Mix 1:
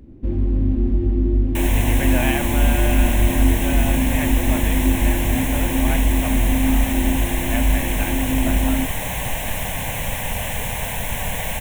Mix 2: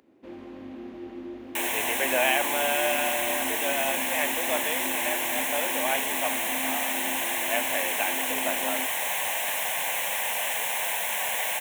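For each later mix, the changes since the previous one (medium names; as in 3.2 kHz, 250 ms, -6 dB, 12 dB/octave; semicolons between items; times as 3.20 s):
speech: remove band-pass filter 1.6 kHz, Q 0.79; master: add high-pass 680 Hz 12 dB/octave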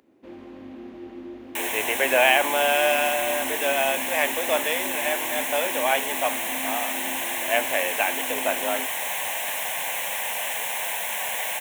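speech +6.0 dB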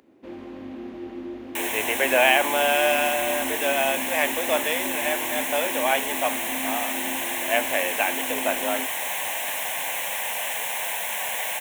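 first sound +3.5 dB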